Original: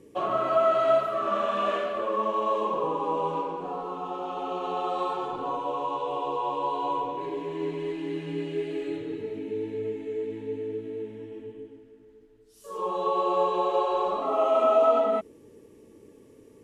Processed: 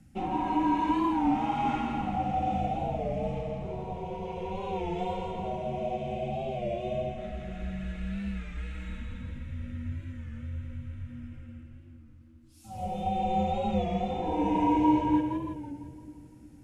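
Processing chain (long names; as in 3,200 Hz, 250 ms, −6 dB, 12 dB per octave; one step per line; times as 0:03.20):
drawn EQ curve 170 Hz 0 dB, 310 Hz −12 dB, 1,100 Hz −7 dB
echo with a time of its own for lows and highs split 660 Hz, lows 361 ms, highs 169 ms, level −5 dB
frequency shifter −350 Hz
wow of a warped record 33 1/3 rpm, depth 100 cents
level +4 dB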